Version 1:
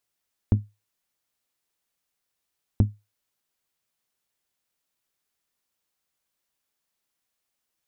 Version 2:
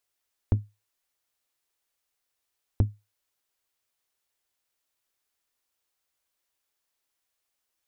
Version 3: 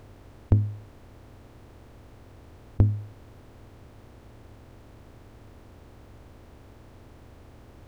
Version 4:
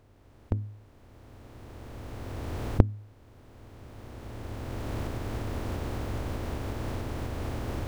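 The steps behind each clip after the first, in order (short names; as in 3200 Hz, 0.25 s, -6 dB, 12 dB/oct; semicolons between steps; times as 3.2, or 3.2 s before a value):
bell 180 Hz -11 dB 0.85 oct
per-bin compression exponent 0.4; gain +3.5 dB
recorder AGC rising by 13 dB/s; gain -11 dB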